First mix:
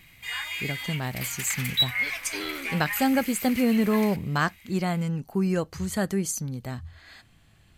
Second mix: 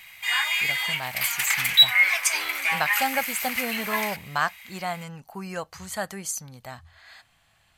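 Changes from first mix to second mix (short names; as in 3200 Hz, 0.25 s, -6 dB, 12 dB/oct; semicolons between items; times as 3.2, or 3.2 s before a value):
first sound +8.0 dB; master: add resonant low shelf 510 Hz -11 dB, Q 1.5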